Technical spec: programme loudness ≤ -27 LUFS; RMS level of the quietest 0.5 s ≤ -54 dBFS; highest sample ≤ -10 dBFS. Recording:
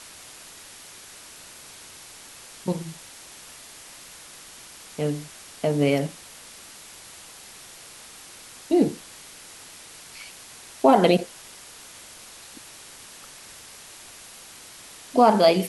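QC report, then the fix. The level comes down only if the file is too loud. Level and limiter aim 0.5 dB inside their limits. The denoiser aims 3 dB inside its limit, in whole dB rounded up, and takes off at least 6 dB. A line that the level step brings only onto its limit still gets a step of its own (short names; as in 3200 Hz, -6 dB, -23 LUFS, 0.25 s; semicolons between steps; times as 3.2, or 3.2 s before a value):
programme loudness -22.5 LUFS: fail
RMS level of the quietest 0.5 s -45 dBFS: fail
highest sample -4.0 dBFS: fail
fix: denoiser 7 dB, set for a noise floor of -45 dBFS; gain -5 dB; limiter -10.5 dBFS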